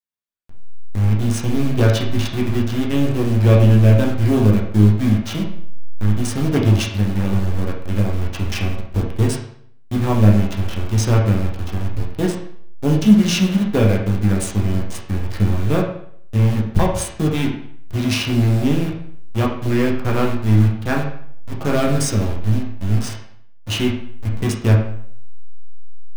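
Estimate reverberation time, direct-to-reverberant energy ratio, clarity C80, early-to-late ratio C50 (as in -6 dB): 0.60 s, -2.0 dB, 8.5 dB, 5.0 dB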